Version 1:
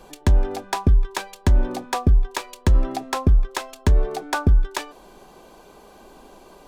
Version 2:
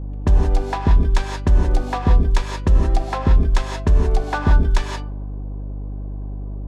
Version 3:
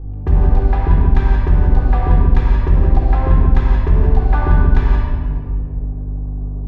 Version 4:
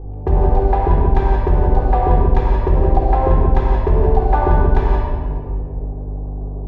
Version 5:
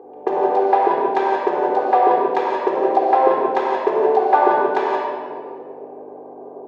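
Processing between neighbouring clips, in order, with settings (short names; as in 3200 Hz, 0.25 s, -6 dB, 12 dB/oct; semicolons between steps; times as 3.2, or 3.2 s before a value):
low-pass opened by the level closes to 550 Hz, open at -16 dBFS; non-linear reverb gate 0.2 s rising, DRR 1.5 dB; buzz 50 Hz, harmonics 6, -28 dBFS -8 dB/oct
LPF 2400 Hz 12 dB/oct; shoebox room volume 3500 m³, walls mixed, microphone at 3.8 m; gain -4 dB
band shelf 580 Hz +10 dB; gain -2.5 dB
HPF 370 Hz 24 dB/oct; gain +4.5 dB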